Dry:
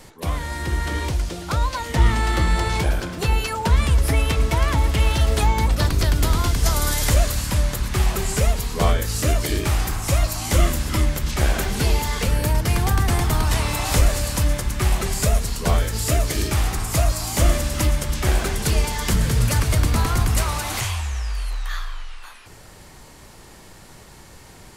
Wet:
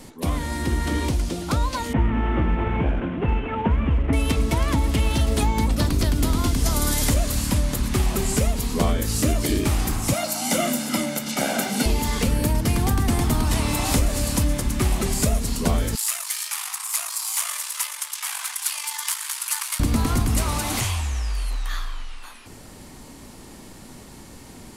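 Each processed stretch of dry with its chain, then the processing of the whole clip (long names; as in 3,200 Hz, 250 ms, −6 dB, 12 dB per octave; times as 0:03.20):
0:01.93–0:04.13: variable-slope delta modulation 16 kbit/s + log-companded quantiser 8 bits + high-frequency loss of the air 110 metres
0:10.13–0:11.86: high-pass filter 200 Hz 24 dB per octave + comb filter 1.4 ms, depth 62%
0:15.95–0:19.80: gain on one half-wave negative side −7 dB + elliptic high-pass filter 950 Hz, stop band 80 dB + parametric band 11,000 Hz +6.5 dB 1.1 octaves
whole clip: graphic EQ with 15 bands 250 Hz +11 dB, 1,600 Hz −3 dB, 10,000 Hz +3 dB; downward compressor 3 to 1, threshold −17 dBFS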